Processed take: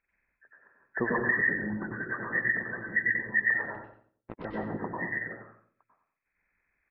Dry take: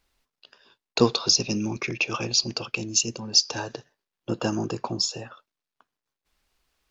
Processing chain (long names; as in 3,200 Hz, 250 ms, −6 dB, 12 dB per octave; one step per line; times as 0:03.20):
hearing-aid frequency compression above 1,300 Hz 4 to 1
0:03.65–0:04.45: power curve on the samples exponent 3
repeating echo 90 ms, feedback 24%, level −8 dB
convolution reverb RT60 0.50 s, pre-delay 91 ms, DRR −5 dB
harmonic and percussive parts rebalanced harmonic −11 dB
level −8 dB